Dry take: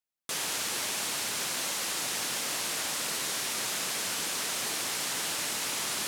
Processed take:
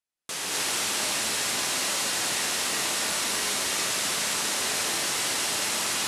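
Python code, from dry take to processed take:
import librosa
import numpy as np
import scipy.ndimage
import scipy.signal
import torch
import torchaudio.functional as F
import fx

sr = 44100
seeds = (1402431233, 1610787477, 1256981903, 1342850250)

y = scipy.signal.sosfilt(scipy.signal.butter(4, 12000.0, 'lowpass', fs=sr, output='sos'), x)
y = fx.rev_gated(y, sr, seeds[0], gate_ms=290, shape='rising', drr_db=-4.0)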